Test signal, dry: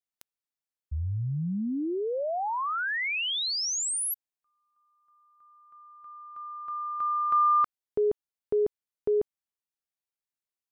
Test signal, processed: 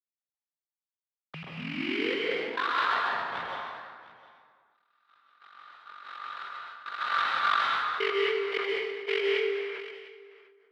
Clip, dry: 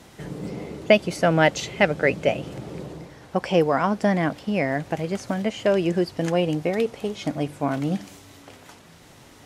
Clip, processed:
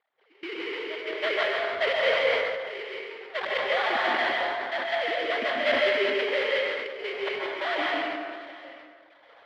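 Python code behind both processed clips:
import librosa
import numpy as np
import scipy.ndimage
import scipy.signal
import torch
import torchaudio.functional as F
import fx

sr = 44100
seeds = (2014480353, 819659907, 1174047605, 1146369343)

p1 = fx.sine_speech(x, sr)
p2 = fx.dereverb_blind(p1, sr, rt60_s=1.7)
p3 = fx.tilt_eq(p2, sr, slope=-3.5)
p4 = fx.over_compress(p3, sr, threshold_db=-30.0, ratio=-1.0)
p5 = p3 + F.gain(torch.from_numpy(p4), 1.0).numpy()
p6 = fx.sample_hold(p5, sr, seeds[0], rate_hz=2600.0, jitter_pct=20)
p7 = fx.bandpass_q(p6, sr, hz=3000.0, q=0.87)
p8 = fx.step_gate(p7, sr, bpm=105, pattern='...xxx.xxx.xxxx', floor_db=-24.0, edge_ms=4.5)
p9 = fx.air_absorb(p8, sr, metres=410.0)
p10 = p9 + fx.echo_multitap(p9, sr, ms=(100, 148, 705), db=(-14.0, -12.0, -19.0), dry=0)
p11 = fx.rev_plate(p10, sr, seeds[1], rt60_s=1.5, hf_ratio=0.65, predelay_ms=120, drr_db=-3.0)
p12 = fx.sustainer(p11, sr, db_per_s=33.0)
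y = F.gain(torch.from_numpy(p12), 1.5).numpy()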